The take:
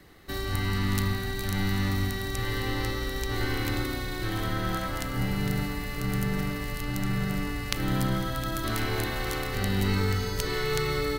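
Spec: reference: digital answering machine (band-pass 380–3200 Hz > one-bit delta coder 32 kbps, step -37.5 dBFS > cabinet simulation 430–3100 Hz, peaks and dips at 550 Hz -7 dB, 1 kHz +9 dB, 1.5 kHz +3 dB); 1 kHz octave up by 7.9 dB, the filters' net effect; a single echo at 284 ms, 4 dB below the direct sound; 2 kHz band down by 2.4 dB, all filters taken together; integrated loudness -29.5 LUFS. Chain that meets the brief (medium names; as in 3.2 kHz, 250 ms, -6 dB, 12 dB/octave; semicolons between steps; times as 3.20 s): band-pass 380–3200 Hz; peaking EQ 1 kHz +7.5 dB; peaking EQ 2 kHz -7.5 dB; delay 284 ms -4 dB; one-bit delta coder 32 kbps, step -37.5 dBFS; cabinet simulation 430–3100 Hz, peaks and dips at 550 Hz -7 dB, 1 kHz +9 dB, 1.5 kHz +3 dB; trim +1.5 dB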